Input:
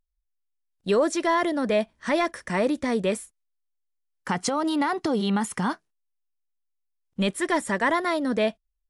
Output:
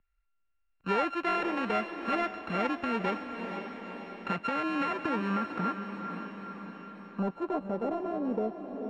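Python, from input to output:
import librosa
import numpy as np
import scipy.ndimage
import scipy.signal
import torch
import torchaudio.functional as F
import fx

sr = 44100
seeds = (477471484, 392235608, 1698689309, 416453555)

y = np.r_[np.sort(x[:len(x) // 32 * 32].reshape(-1, 32), axis=1).ravel(), x[len(x) // 32 * 32:]]
y = fx.filter_sweep_lowpass(y, sr, from_hz=2200.0, to_hz=440.0, start_s=4.84, end_s=8.7, q=1.5)
y = fx.echo_diffused(y, sr, ms=486, feedback_pct=47, wet_db=-9.5)
y = fx.band_squash(y, sr, depth_pct=40)
y = y * librosa.db_to_amplitude(-7.0)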